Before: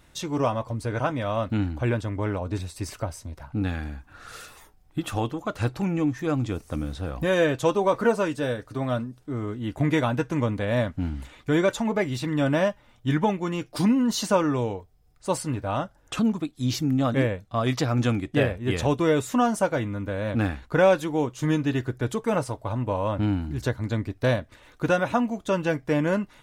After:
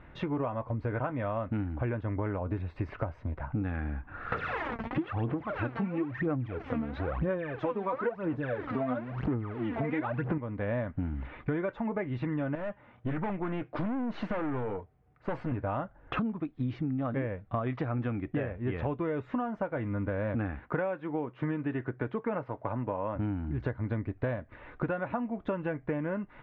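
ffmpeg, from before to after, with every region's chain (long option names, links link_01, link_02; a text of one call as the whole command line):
ffmpeg -i in.wav -filter_complex "[0:a]asettb=1/sr,asplit=3[link_01][link_02][link_03];[link_01]atrim=end=4.324[link_04];[link_02]atrim=start=4.32:end=10.38,asetpts=PTS-STARTPTS,afade=type=in:duration=0.004:curve=qsin,afade=type=out:start_time=6.056:duration=0.004:curve=qsin,aeval=exprs='val(0)+0.5*0.0282*sgn(val(0))':channel_layout=same,highpass=81,aphaser=in_gain=1:out_gain=1:delay=4.5:decay=0.73:speed=1:type=sinusoidal[link_05];[link_03]atrim=start=10.376[link_06];[link_04][link_05]acrossfade=duration=0.004:curve1=hsin:curve2=qsin[link_07];[link_07][link_06]acrossfade=duration=0.004:curve1=qsin:curve2=hsin,asettb=1/sr,asplit=3[link_08][link_09][link_10];[link_08]atrim=end=12.554[link_11];[link_09]atrim=start=12.55:end=15.52,asetpts=PTS-STARTPTS,afade=type=in:duration=0.004:curve=qsin,afade=type=out:start_time=2.966:duration=0.004:curve=qsin,highpass=94,aeval=exprs='(tanh(25.1*val(0)+0.45)-tanh(0.45))/25.1':channel_layout=same[link_12];[link_10]atrim=start=15.516[link_13];[link_11][link_12]acrossfade=duration=0.004:curve1=hsin:curve2=qsin[link_14];[link_14][link_13]acrossfade=duration=0.004:curve1=qsin:curve2=hsin,asettb=1/sr,asplit=3[link_15][link_16][link_17];[link_15]atrim=end=20.594[link_18];[link_16]atrim=start=20.59:end=23.16,asetpts=PTS-STARTPTS,afade=type=in:duration=0.004:curve=qsin,afade=type=out:start_time=2.566:duration=0.004:curve=qsin,highpass=130,lowpass=2500,aemphasis=mode=production:type=75kf[link_19];[link_17]atrim=start=23.156[link_20];[link_18][link_19]acrossfade=duration=0.004:curve1=hsin:curve2=qsin[link_21];[link_21][link_20]acrossfade=duration=0.004:curve1=qsin:curve2=hsin,lowpass=frequency=2200:width=0.5412,lowpass=frequency=2200:width=1.3066,acompressor=threshold=-34dB:ratio=10,volume=5dB" out.wav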